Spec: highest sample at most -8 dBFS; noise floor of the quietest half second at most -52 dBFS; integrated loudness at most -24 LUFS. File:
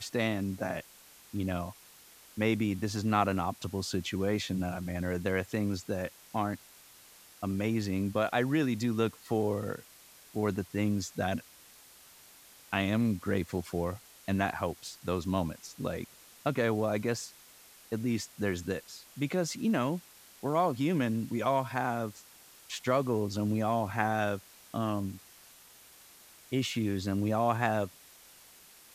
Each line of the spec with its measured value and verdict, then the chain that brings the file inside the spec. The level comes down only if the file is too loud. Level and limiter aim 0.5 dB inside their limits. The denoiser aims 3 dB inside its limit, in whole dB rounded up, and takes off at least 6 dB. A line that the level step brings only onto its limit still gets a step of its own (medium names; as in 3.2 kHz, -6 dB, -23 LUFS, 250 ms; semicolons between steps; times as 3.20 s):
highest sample -11.0 dBFS: pass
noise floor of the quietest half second -56 dBFS: pass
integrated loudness -32.5 LUFS: pass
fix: none needed